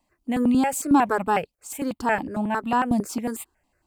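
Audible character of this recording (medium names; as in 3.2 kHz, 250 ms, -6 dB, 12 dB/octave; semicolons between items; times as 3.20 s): notches that jump at a steady rate 11 Hz 400–1600 Hz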